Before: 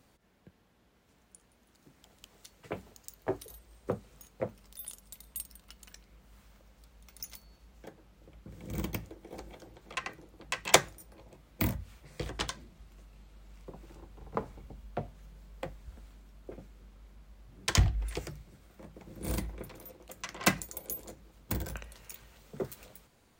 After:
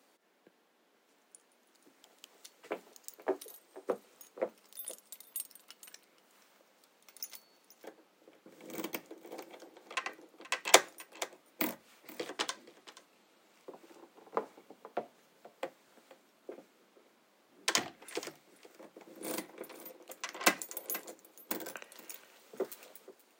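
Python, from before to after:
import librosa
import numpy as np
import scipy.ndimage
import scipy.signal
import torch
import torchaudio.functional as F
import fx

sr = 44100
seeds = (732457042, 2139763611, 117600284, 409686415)

y = scipy.signal.sosfilt(scipy.signal.butter(4, 280.0, 'highpass', fs=sr, output='sos'), x)
y = y + 10.0 ** (-18.0 / 20.0) * np.pad(y, (int(478 * sr / 1000.0), 0))[:len(y)]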